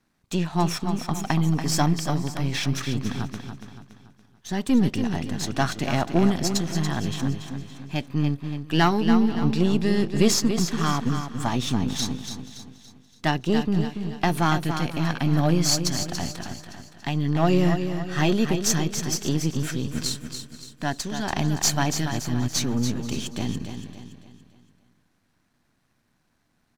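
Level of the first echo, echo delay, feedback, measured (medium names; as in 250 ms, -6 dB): -8.0 dB, 284 ms, no regular repeats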